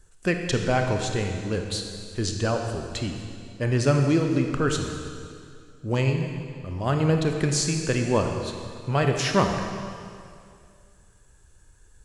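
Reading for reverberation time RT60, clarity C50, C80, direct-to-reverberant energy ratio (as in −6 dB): 2.3 s, 4.5 dB, 5.0 dB, 3.5 dB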